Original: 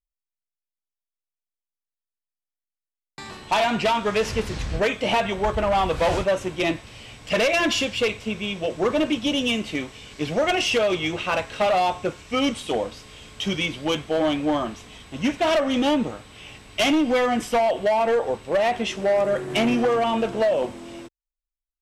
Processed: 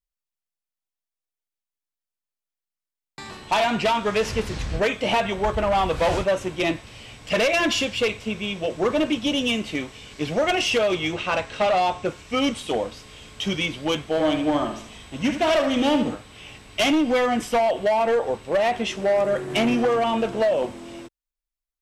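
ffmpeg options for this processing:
-filter_complex "[0:a]asettb=1/sr,asplit=3[s0][s1][s2];[s0]atrim=end=11.144[s3];[s1]atrim=start=11.14:end=12.06,asetpts=PTS-STARTPTS,afade=t=in:d=0.004:c=qsin,afade=t=out:st=0.916:d=0.004:c=qsin,lowpass=8900[s4];[s2]atrim=start=12.056[s5];[s3][s4]acrossfade=d=0.004:c1=hsin:c2=qsin[s6];[s6][s5]acrossfade=d=0.004:c1=qsin:c2=hsin,asettb=1/sr,asplit=3[s7][s8][s9];[s7]atrim=end=14.104[s10];[s8]atrim=start=14.1:end=16.15,asetpts=PTS-STARTPTS,afade=t=in:d=0.004:c=qsin,afade=t=out:st=2.046:d=0.004:c=qsin,aecho=1:1:74|148|222|296:0.398|0.151|0.0575|0.0218,atrim=end_sample=90405[s11];[s9]atrim=start=16.146[s12];[s10][s11]acrossfade=d=0.004:c1=hsin:c2=qsin[s13];[s13][s12]acrossfade=d=0.004:c1=qsin:c2=hsin"

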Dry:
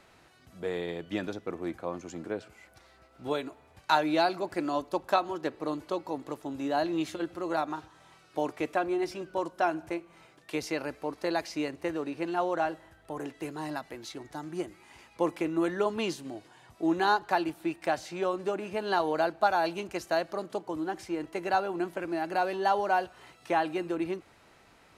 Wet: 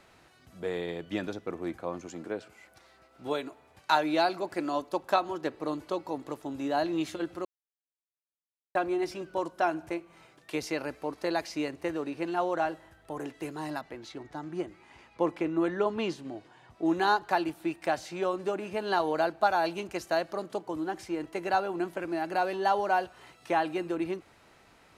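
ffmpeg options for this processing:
-filter_complex "[0:a]asettb=1/sr,asplit=3[s0][s1][s2];[s0]atrim=end=2.074[s3];[s1]atrim=start=2.07:end=5.1,asetpts=PTS-STARTPTS,afade=t=in:d=0.004:c=qsin,afade=t=out:st=3.026:d=0.004:c=qsin,lowshelf=f=92:g=-10.5[s4];[s2]atrim=start=5.096[s5];[s3][s4]acrossfade=d=0.004:c1=hsin:c2=qsin[s6];[s6][s5]acrossfade=d=0.004:c1=qsin:c2=hsin,asettb=1/sr,asplit=3[s7][s8][s9];[s7]atrim=end=13.814[s10];[s8]atrim=start=13.81:end=16.86,asetpts=PTS-STARTPTS,afade=t=in:d=0.004:c=qsin,afade=t=out:st=3.046:d=0.004:c=qsin,aemphasis=mode=reproduction:type=50fm[s11];[s9]atrim=start=16.856[s12];[s10][s11]acrossfade=d=0.004:c1=hsin:c2=qsin[s13];[s13][s12]acrossfade=d=0.004:c1=qsin:c2=hsin,asplit=3[s14][s15][s16];[s14]atrim=end=7.45,asetpts=PTS-STARTPTS,afade=t=out:st=7.446:d=0.004:c=hsin[s17];[s15]atrim=start=7.45:end=8.75,asetpts=PTS-STARTPTS,volume=0[s18];[s16]atrim=start=8.75,asetpts=PTS-STARTPTS,afade=t=in:d=0.004:c=hsin[s19];[s17][s18][s19]concat=n=3:v=0:a=1"

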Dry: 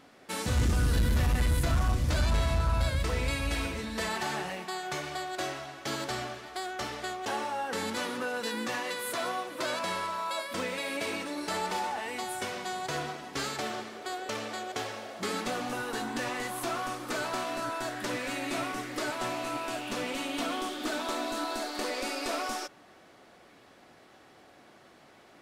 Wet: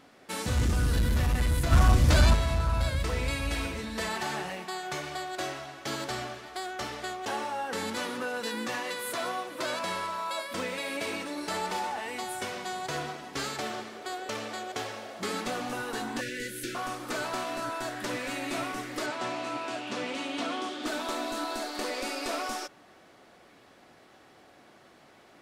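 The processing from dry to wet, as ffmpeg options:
-filter_complex "[0:a]asplit=3[s0][s1][s2];[s0]afade=t=out:st=1.71:d=0.02[s3];[s1]acontrast=84,afade=t=in:st=1.71:d=0.02,afade=t=out:st=2.33:d=0.02[s4];[s2]afade=t=in:st=2.33:d=0.02[s5];[s3][s4][s5]amix=inputs=3:normalize=0,asettb=1/sr,asplit=3[s6][s7][s8];[s6]atrim=end=16.214[s9];[s7]atrim=start=16.21:end=16.75,asetpts=PTS-STARTPTS,afade=t=in:d=0.004:c=qsin,afade=t=out:st=0.536:d=0.004:c=qsin,asuperstop=centerf=890:order=20:qfactor=1[s10];[s8]atrim=start=16.746[s11];[s9][s10]acrossfade=d=0.004:c1=hsin:c2=qsin[s12];[s12][s11]acrossfade=d=0.004:c1=qsin:c2=hsin,asettb=1/sr,asplit=3[s13][s14][s15];[s13]atrim=end=19.064[s16];[s14]atrim=start=19.06:end=20.86,asetpts=PTS-STARTPTS,afade=t=in:d=0.004:c=qsin,afade=t=out:st=1.796:d=0.004:c=qsin,highpass=120,lowpass=6700[s17];[s15]atrim=start=20.856[s18];[s16][s17]acrossfade=d=0.004:c1=hsin:c2=qsin[s19];[s19][s18]acrossfade=d=0.004:c1=qsin:c2=hsin"

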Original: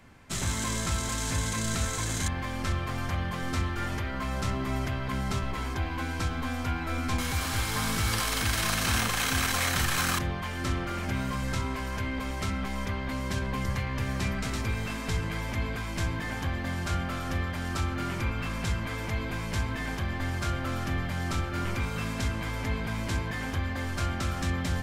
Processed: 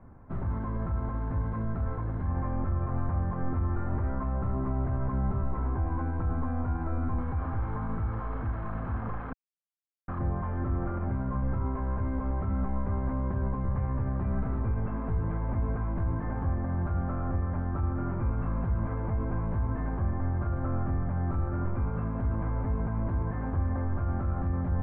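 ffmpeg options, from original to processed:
-filter_complex "[0:a]asplit=3[s0][s1][s2];[s0]atrim=end=9.33,asetpts=PTS-STARTPTS,afade=t=out:st=9.326:d=0.004:c=hsin[s3];[s1]atrim=start=9.33:end=10.08,asetpts=PTS-STARTPTS,volume=0[s4];[s2]atrim=start=10.08,asetpts=PTS-STARTPTS,afade=t=in:d=0.004:c=hsin[s5];[s3][s4][s5]concat=n=3:v=0:a=1,alimiter=level_in=1.06:limit=0.0631:level=0:latency=1,volume=0.944,lowpass=f=1200:w=0.5412,lowpass=f=1200:w=1.3066,lowshelf=f=100:g=7.5,volume=1.12"

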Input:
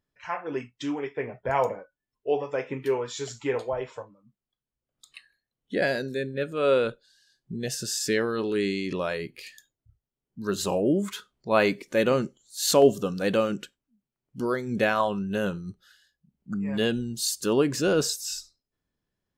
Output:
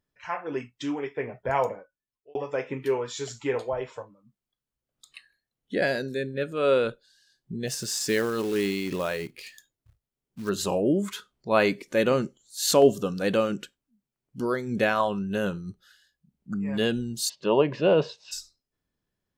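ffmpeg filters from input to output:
-filter_complex "[0:a]asplit=3[s0][s1][s2];[s0]afade=t=out:st=7.67:d=0.02[s3];[s1]acrusher=bits=4:mode=log:mix=0:aa=0.000001,afade=t=in:st=7.67:d=0.02,afade=t=out:st=10.48:d=0.02[s4];[s2]afade=t=in:st=10.48:d=0.02[s5];[s3][s4][s5]amix=inputs=3:normalize=0,asplit=3[s6][s7][s8];[s6]afade=t=out:st=17.28:d=0.02[s9];[s7]highpass=140,equalizer=f=160:t=q:w=4:g=5,equalizer=f=270:t=q:w=4:g=-7,equalizer=f=600:t=q:w=4:g=10,equalizer=f=930:t=q:w=4:g=10,equalizer=f=1400:t=q:w=4:g=-7,equalizer=f=2800:t=q:w=4:g=4,lowpass=f=3300:w=0.5412,lowpass=f=3300:w=1.3066,afade=t=in:st=17.28:d=0.02,afade=t=out:st=18.31:d=0.02[s10];[s8]afade=t=in:st=18.31:d=0.02[s11];[s9][s10][s11]amix=inputs=3:normalize=0,asplit=2[s12][s13];[s12]atrim=end=2.35,asetpts=PTS-STARTPTS,afade=t=out:st=1.54:d=0.81[s14];[s13]atrim=start=2.35,asetpts=PTS-STARTPTS,afade=t=in:d=0.004:c=hsin[s15];[s14][s15]concat=n=2:v=0:a=1"

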